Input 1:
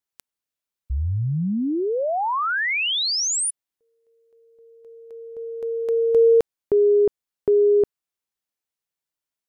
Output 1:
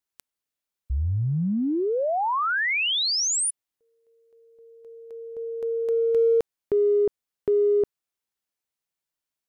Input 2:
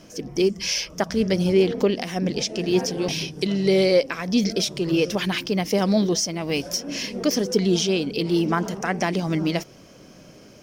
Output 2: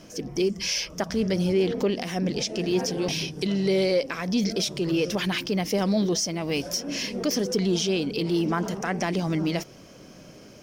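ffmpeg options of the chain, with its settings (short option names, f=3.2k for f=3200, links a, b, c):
-af "acompressor=threshold=-21dB:ratio=2:attack=0.15:release=28:knee=6:detection=rms"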